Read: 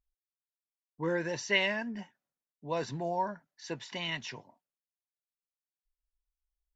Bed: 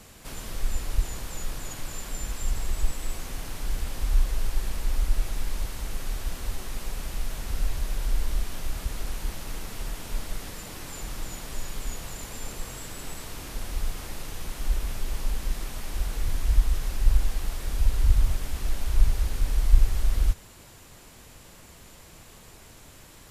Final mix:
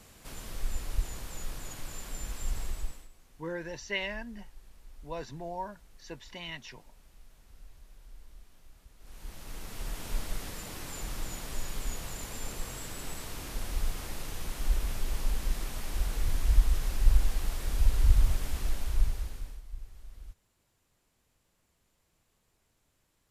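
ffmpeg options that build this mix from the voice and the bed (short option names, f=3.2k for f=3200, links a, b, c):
-filter_complex "[0:a]adelay=2400,volume=-5.5dB[a];[1:a]volume=17.5dB,afade=t=out:st=2.62:d=0.47:silence=0.105925,afade=t=in:st=8.99:d=1.09:silence=0.0707946,afade=t=out:st=18.54:d=1.08:silence=0.0749894[b];[a][b]amix=inputs=2:normalize=0"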